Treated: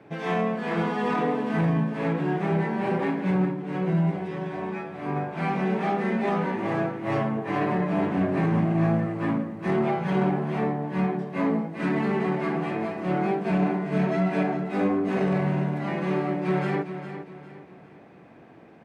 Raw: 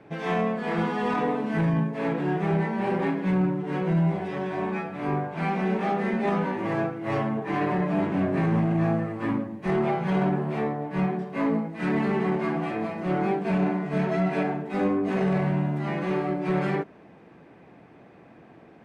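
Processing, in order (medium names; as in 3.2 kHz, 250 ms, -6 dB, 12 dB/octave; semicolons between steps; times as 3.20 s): high-pass 63 Hz; feedback delay 406 ms, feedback 36%, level -10.5 dB; 3.45–5.16 s: upward expansion 1.5:1, over -27 dBFS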